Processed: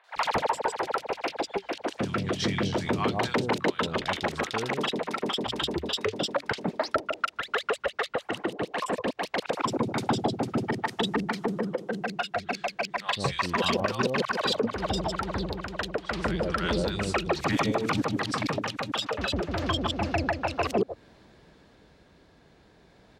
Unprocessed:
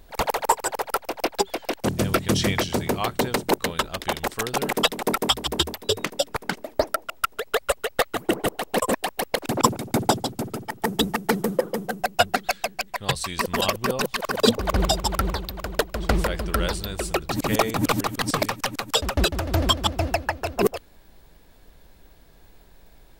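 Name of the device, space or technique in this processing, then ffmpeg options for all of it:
AM radio: -filter_complex "[0:a]highpass=100,lowpass=4400,acrossover=split=800|2700[s0][s1][s2];[s2]adelay=40[s3];[s0]adelay=160[s4];[s4][s1][s3]amix=inputs=3:normalize=0,acompressor=threshold=0.0501:ratio=6,asoftclip=type=tanh:threshold=0.119,tremolo=f=0.29:d=0.37,volume=1.78"

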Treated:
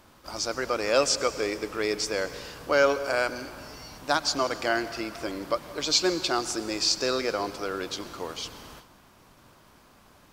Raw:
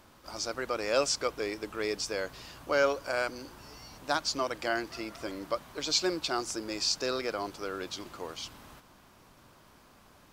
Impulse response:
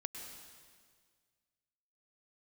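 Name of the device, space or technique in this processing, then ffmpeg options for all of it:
keyed gated reverb: -filter_complex "[0:a]asplit=3[s0][s1][s2];[1:a]atrim=start_sample=2205[s3];[s1][s3]afir=irnorm=-1:irlink=0[s4];[s2]apad=whole_len=455304[s5];[s4][s5]sidechaingate=range=0.0224:threshold=0.00178:ratio=16:detection=peak,volume=0.668[s6];[s0][s6]amix=inputs=2:normalize=0,volume=1.19"

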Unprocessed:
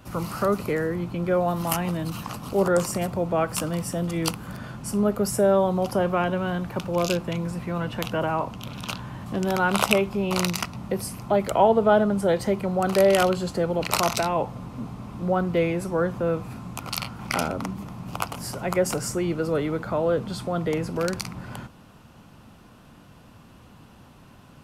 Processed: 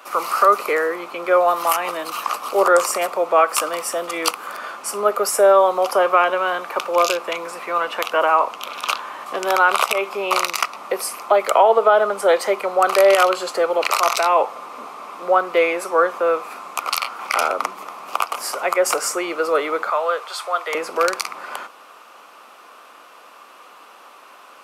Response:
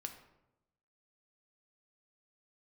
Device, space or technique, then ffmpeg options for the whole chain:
laptop speaker: -filter_complex "[0:a]highpass=f=440:w=0.5412,highpass=f=440:w=1.3066,equalizer=f=1200:t=o:w=0.33:g=10,equalizer=f=2300:t=o:w=0.33:g=5,alimiter=limit=0.251:level=0:latency=1:release=147,asettb=1/sr,asplit=3[s0][s1][s2];[s0]atrim=end=19.904[s3];[s1]atrim=start=19.9:end=20.75,asetpts=PTS-STARTPTS,afade=t=in:d=0.004:c=qsin,afade=t=out:st=0.846:d=0.004:c=qsin,highpass=760[s4];[s2]atrim=start=20.746[s5];[s3][s4]acrossfade=d=0.004:c1=hsin:c2=qsin[s6];[s6][s5]acrossfade=d=0.004:c1=qsin:c2=hsin,volume=2.51"

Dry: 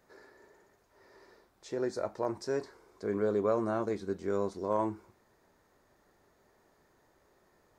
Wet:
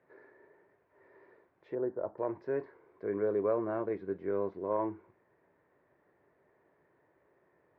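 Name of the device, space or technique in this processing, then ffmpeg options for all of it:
bass cabinet: -filter_complex "[0:a]asettb=1/sr,asplit=3[s0][s1][s2];[s0]atrim=end=1.754[s3];[s1]atrim=start=1.75:end=2.18,asetpts=PTS-STARTPTS,afade=t=in:d=0.004:c=qsin,afade=t=out:st=0.426:d=0.004:c=qsin,lowpass=f=1300:w=0.5412,lowpass=f=1300:w=1.3066[s4];[s2]atrim=start=2.176[s5];[s3][s4]acrossfade=d=0.004:c1=hsin:c2=qsin[s6];[s6][s5]acrossfade=d=0.004:c1=qsin:c2=hsin,highpass=f=77:w=0.5412,highpass=f=77:w=1.3066,equalizer=f=80:t=q:w=4:g=-7,equalizer=f=110:t=q:w=4:g=-4,equalizer=f=220:t=q:w=4:g=-9,equalizer=f=790:t=q:w=4:g=-5,equalizer=f=1300:t=q:w=4:g=-7,lowpass=f=2200:w=0.5412,lowpass=f=2200:w=1.3066"

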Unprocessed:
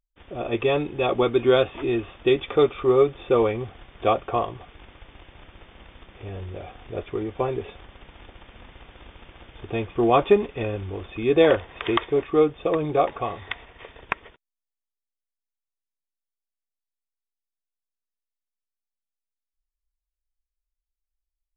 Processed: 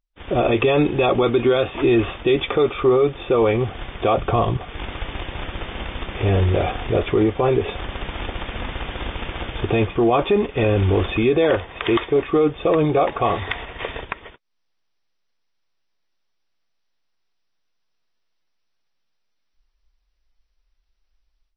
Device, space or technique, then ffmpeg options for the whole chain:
low-bitrate web radio: -filter_complex "[0:a]asettb=1/sr,asplit=3[s0][s1][s2];[s0]atrim=end=4.174[s3];[s1]atrim=start=4.17:end=4.57,asetpts=PTS-STARTPTS,afade=t=in:d=0.004:c=qsin,afade=t=out:st=0.396:d=0.004:c=qsin,bass=f=250:g=10,treble=f=4000:g=8[s4];[s2]atrim=start=4.566[s5];[s3][s4]acrossfade=d=0.004:c1=hsin:c2=qsin[s6];[s6][s5]acrossfade=d=0.004:c1=qsin:c2=hsin,dynaudnorm=f=150:g=3:m=6.31,alimiter=limit=0.299:level=0:latency=1:release=26,volume=1.26" -ar 24000 -c:a libmp3lame -b:a 24k

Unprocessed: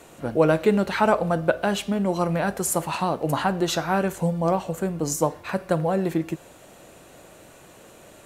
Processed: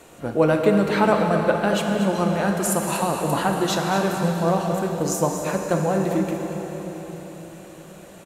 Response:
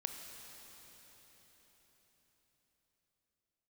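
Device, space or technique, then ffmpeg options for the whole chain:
cave: -filter_complex "[0:a]aecho=1:1:236:0.316[s0];[1:a]atrim=start_sample=2205[s1];[s0][s1]afir=irnorm=-1:irlink=0,volume=1.33"

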